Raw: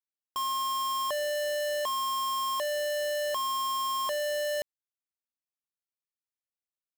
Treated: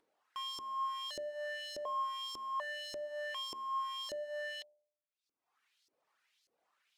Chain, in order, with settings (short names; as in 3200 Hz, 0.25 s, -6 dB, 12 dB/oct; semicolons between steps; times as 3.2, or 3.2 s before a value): reverb removal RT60 0.7 s; LFO band-pass saw up 1.7 Hz 350–5400 Hz; in parallel at 0 dB: limiter -41.5 dBFS, peak gain reduction 11.5 dB; on the sum: upward compressor, threshold -53 dBFS; de-hum 74.44 Hz, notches 12; gain -2.5 dB